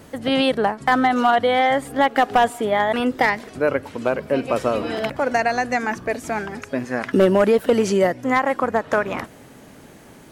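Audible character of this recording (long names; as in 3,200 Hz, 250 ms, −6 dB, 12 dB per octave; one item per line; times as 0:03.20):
background noise floor −45 dBFS
spectral slope −3.0 dB per octave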